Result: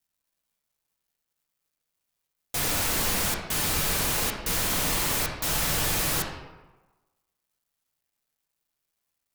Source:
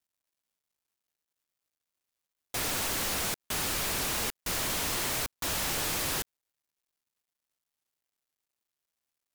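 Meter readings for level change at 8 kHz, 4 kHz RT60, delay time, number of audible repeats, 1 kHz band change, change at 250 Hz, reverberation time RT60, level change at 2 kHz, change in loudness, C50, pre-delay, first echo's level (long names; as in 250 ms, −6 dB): +4.5 dB, 0.70 s, no echo audible, no echo audible, +4.0 dB, +5.5 dB, 1.2 s, +4.0 dB, +5.0 dB, 3.5 dB, 3 ms, no echo audible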